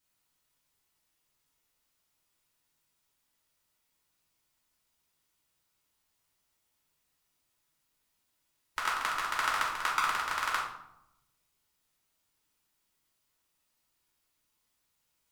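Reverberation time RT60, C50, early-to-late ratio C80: 0.85 s, 3.5 dB, 7.5 dB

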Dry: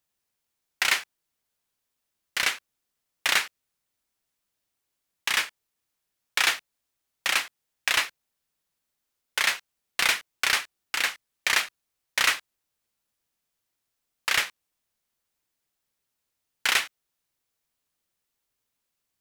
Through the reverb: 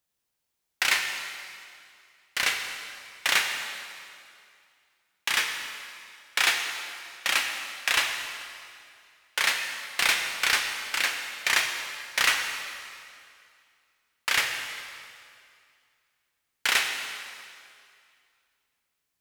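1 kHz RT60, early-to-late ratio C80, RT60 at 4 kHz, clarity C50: 2.3 s, 6.0 dB, 2.1 s, 5.0 dB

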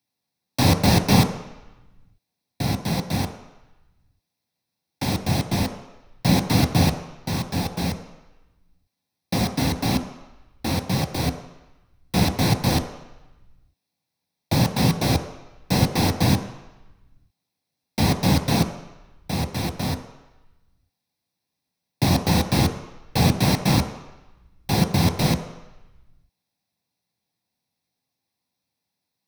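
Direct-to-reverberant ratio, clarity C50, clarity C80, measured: 6.0 dB, 10.0 dB, 11.5 dB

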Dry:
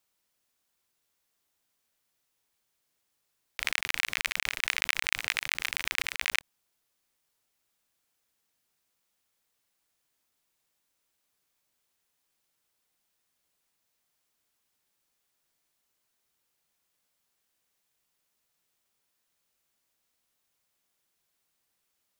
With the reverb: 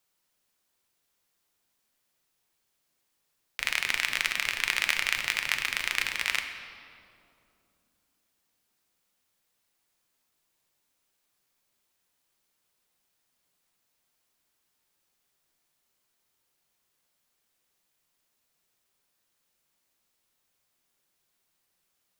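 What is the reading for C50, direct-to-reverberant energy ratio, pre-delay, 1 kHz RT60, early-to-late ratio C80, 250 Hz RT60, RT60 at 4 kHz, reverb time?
7.5 dB, 5.0 dB, 6 ms, 2.4 s, 8.5 dB, 3.9 s, 1.6 s, 2.8 s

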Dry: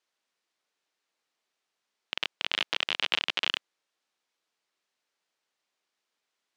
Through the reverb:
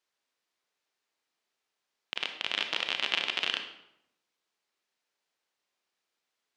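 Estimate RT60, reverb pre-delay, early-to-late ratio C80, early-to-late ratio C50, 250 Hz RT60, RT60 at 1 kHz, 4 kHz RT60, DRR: 0.80 s, 28 ms, 10.5 dB, 7.5 dB, 0.95 s, 0.75 s, 0.60 s, 5.5 dB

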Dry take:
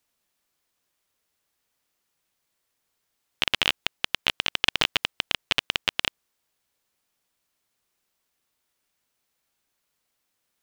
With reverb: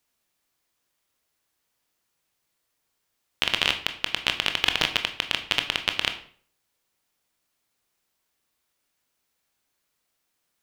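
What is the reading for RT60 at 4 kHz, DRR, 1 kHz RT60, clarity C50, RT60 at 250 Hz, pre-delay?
0.40 s, 6.5 dB, 0.50 s, 11.5 dB, 0.55 s, 18 ms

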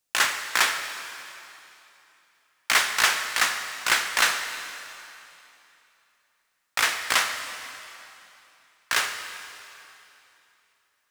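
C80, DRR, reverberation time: 7.5 dB, 6.0 dB, 3.0 s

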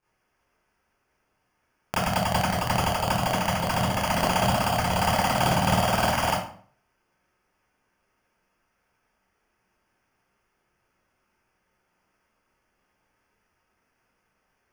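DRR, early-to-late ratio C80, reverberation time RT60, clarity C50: -11.0 dB, 7.0 dB, 0.50 s, 3.0 dB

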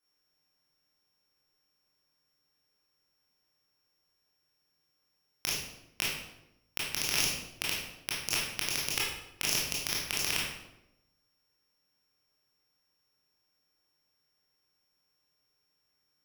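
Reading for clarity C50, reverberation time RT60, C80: 0.5 dB, 0.90 s, 4.0 dB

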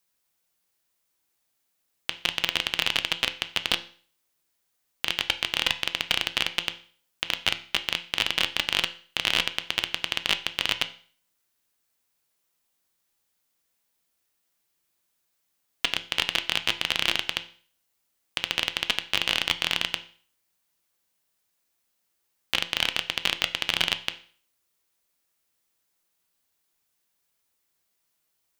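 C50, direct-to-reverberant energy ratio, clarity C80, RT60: 15.5 dB, 9.0 dB, 19.5 dB, 0.45 s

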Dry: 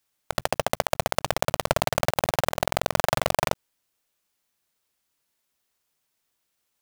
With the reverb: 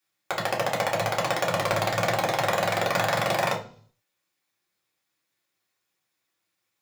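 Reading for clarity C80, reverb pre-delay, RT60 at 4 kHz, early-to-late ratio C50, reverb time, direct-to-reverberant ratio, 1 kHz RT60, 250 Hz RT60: 16.0 dB, 3 ms, 0.60 s, 10.5 dB, 0.50 s, -3.5 dB, 0.45 s, 0.60 s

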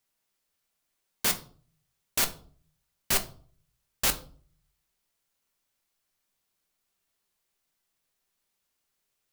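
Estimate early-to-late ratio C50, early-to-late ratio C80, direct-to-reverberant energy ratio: 15.0 dB, 20.0 dB, 7.0 dB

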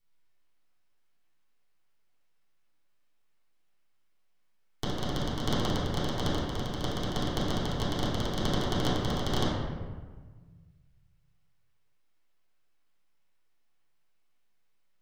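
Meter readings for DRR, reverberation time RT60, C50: -11.0 dB, 1.5 s, -1.5 dB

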